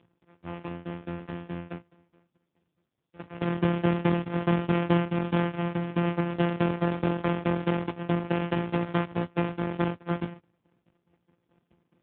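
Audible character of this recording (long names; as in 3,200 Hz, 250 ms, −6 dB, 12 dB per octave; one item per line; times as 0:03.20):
a buzz of ramps at a fixed pitch in blocks of 256 samples
tremolo saw down 4.7 Hz, depth 95%
AMR narrowband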